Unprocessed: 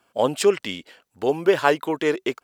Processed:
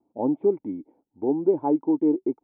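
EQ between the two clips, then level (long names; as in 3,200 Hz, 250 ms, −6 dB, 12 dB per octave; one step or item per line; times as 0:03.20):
formant resonators in series u
parametric band 1,800 Hz −6.5 dB 0.29 octaves
high-shelf EQ 2,400 Hz −9 dB
+8.0 dB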